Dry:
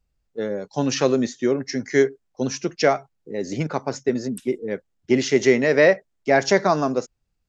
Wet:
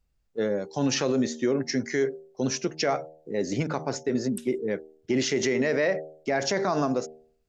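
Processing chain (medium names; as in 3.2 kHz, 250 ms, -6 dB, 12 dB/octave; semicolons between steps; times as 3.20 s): de-hum 78.35 Hz, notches 11; peak limiter -16 dBFS, peak gain reduction 11.5 dB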